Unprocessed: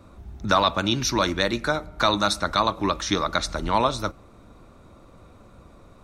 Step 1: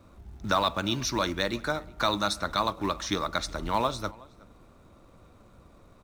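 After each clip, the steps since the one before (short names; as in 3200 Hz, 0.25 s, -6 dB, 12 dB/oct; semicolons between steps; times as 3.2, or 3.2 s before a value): in parallel at -12 dB: companded quantiser 4-bit; on the sum: outdoor echo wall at 63 m, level -23 dB; gain -7.5 dB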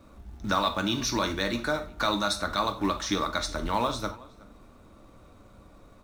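in parallel at +1 dB: limiter -19 dBFS, peak gain reduction 7 dB; on the sum: reverb, pre-delay 3 ms, DRR 6 dB; gain -5.5 dB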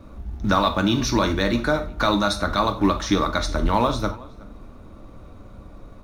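tilt -1.5 dB/oct; notch 7800 Hz, Q 8.7; gain +6 dB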